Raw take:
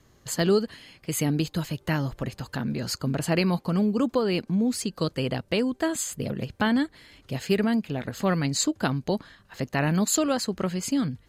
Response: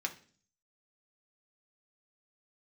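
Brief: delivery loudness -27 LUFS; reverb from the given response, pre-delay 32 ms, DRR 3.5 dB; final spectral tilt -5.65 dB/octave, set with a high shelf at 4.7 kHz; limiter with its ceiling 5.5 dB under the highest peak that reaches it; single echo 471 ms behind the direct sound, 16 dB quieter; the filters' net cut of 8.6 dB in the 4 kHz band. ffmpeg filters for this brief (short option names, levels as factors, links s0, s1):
-filter_complex "[0:a]equalizer=f=4000:t=o:g=-8,highshelf=f=4700:g=-6.5,alimiter=limit=0.133:level=0:latency=1,aecho=1:1:471:0.158,asplit=2[s0][s1];[1:a]atrim=start_sample=2205,adelay=32[s2];[s1][s2]afir=irnorm=-1:irlink=0,volume=0.501[s3];[s0][s3]amix=inputs=2:normalize=0,volume=1.12"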